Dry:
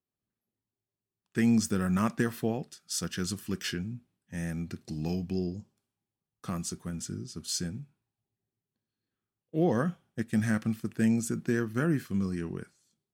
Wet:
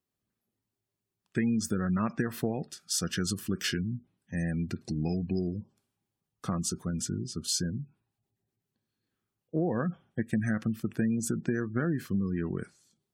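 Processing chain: spectral gate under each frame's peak -30 dB strong; compressor 5:1, threshold -30 dBFS, peak gain reduction 9 dB; gain +4.5 dB

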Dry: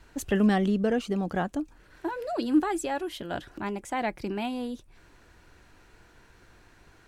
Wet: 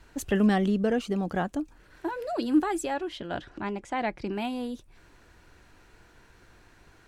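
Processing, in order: 2.94–4.33 LPF 5500 Hz 12 dB/oct

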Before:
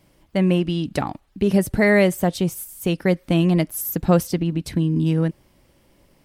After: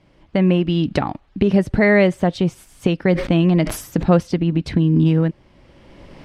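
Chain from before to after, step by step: recorder AGC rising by 16 dB/s; LPF 3800 Hz 12 dB/oct; 3.06–4.03 sustainer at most 98 dB/s; gain +2 dB

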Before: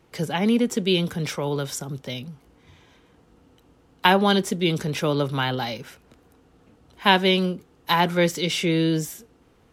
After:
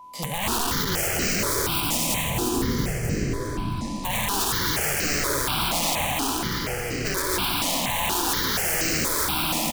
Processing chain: spectral trails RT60 2.72 s; high shelf 5600 Hz +8 dB; de-hum 174.2 Hz, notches 12; echoes that change speed 0.659 s, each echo -3 st, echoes 3, each echo -6 dB; limiter -9 dBFS, peak gain reduction 11 dB; wrapped overs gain 14.5 dB; 2.3–4.05 tilt shelf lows +8 dB, about 1300 Hz; frequency-shifting echo 0.262 s, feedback 36%, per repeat -87 Hz, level -4 dB; whine 1000 Hz -35 dBFS; echo 0.688 s -7.5 dB; step phaser 4.2 Hz 410–3500 Hz; gain -3.5 dB

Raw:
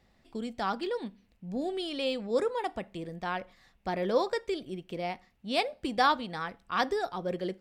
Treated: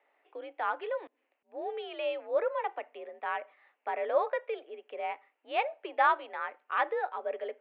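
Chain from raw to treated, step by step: mistuned SSB +56 Hz 390–2700 Hz; 1.07–1.58 auto swell 0.186 s

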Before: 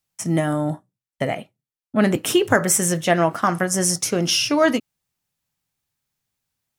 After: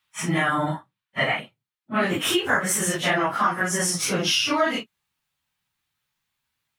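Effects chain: phase scrambler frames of 0.1 s; band shelf 1900 Hz +14.5 dB 2.5 oct, from 1.39 s +8 dB; compressor 3:1, threshold -18 dBFS, peak gain reduction 9 dB; gain -2 dB

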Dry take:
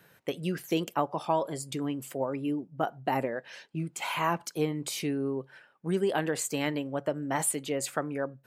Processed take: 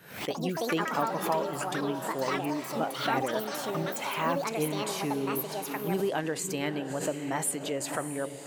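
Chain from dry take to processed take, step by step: diffused feedback echo 0.632 s, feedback 44%, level -10 dB; echoes that change speed 0.104 s, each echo +6 st, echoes 2; backwards sustainer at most 96 dB/s; gain -2 dB

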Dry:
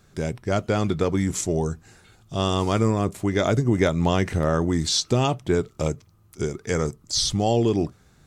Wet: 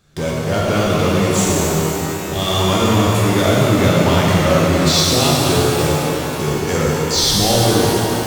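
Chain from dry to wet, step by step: bell 3400 Hz +4.5 dB 0.79 oct; in parallel at -11 dB: fuzz box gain 42 dB, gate -43 dBFS; on the sum: shimmer reverb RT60 3.3 s, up +12 st, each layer -8 dB, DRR -5 dB; gain -2.5 dB

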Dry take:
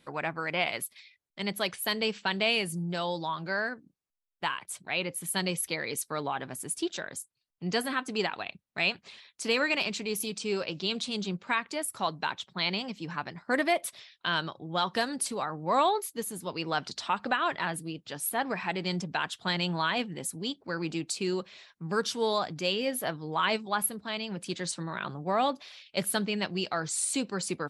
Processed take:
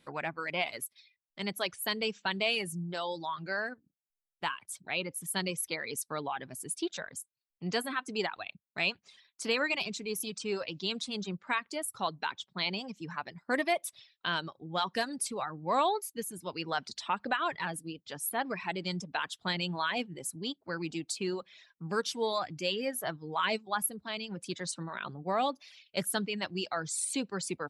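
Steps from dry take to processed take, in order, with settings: reverb removal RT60 0.92 s; gain -2.5 dB

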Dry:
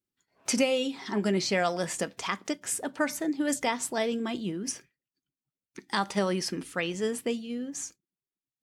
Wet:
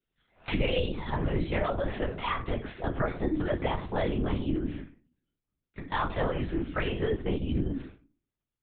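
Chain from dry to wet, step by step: shoebox room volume 170 m³, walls furnished, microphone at 2.7 m; compressor 4:1, threshold -26 dBFS, peak gain reduction 12 dB; high shelf 2500 Hz +8.5 dB, from 0.87 s -4.5 dB; LPC vocoder at 8 kHz whisper

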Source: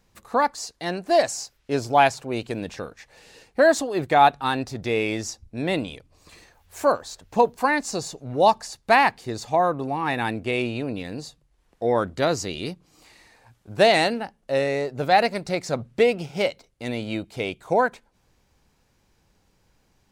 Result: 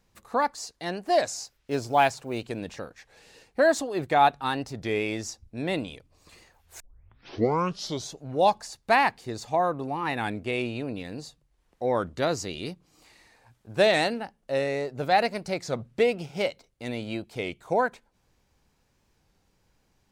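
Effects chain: 1.57–2.41 block floating point 7-bit; 6.8 tape start 1.41 s; record warp 33 1/3 rpm, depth 100 cents; gain -4 dB

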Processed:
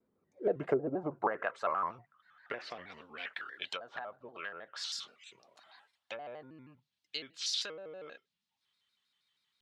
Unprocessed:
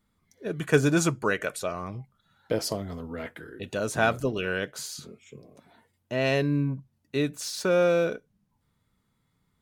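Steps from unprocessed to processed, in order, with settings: 3.3–6.5 band shelf 1000 Hz +11 dB; treble ducked by the level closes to 580 Hz, closed at -18.5 dBFS; compressor 6:1, threshold -26 dBFS, peak gain reduction 10.5 dB; band-pass sweep 410 Hz -> 3600 Hz, 0.06–3.62; shaped vibrato square 6.3 Hz, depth 160 cents; gain +7 dB

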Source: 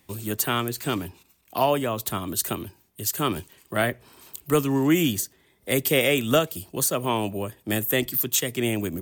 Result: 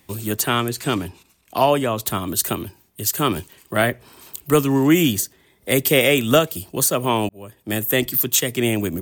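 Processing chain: 0.4–2.06 LPF 12000 Hz 12 dB/oct; 7.29–8.21 fade in equal-power; gain +5 dB

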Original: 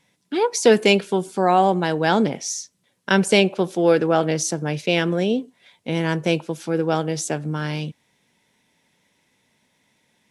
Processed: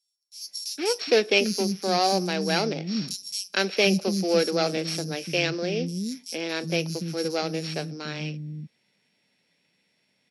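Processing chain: sample sorter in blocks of 8 samples; speaker cabinet 140–9700 Hz, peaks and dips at 190 Hz +3 dB, 960 Hz -9 dB, 2500 Hz +8 dB, 4400 Hz +9 dB; three bands offset in time highs, mids, lows 0.46/0.75 s, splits 260/5400 Hz; gain -4.5 dB

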